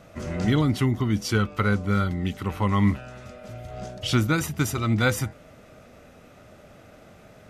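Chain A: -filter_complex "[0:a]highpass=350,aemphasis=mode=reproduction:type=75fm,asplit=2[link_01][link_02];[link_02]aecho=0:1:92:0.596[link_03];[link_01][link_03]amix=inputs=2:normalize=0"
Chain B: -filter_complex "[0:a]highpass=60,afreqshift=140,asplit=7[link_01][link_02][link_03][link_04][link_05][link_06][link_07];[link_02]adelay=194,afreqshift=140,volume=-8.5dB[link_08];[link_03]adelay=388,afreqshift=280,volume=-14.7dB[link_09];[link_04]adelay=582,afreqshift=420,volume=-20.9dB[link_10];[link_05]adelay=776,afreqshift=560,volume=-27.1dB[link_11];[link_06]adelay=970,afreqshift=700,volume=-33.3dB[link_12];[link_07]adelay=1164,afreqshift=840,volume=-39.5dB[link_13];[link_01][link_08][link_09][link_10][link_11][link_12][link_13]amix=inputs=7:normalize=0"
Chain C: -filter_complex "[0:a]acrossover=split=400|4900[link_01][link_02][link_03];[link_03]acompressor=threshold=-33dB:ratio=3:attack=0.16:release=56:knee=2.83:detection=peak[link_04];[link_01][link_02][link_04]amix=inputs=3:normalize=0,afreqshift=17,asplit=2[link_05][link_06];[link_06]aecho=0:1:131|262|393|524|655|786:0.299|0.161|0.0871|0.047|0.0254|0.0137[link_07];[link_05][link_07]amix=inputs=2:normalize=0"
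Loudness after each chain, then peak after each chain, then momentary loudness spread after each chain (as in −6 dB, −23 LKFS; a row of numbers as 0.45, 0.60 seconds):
−29.0, −24.0, −24.5 LKFS; −10.0, −8.0, −8.5 dBFS; 15, 14, 16 LU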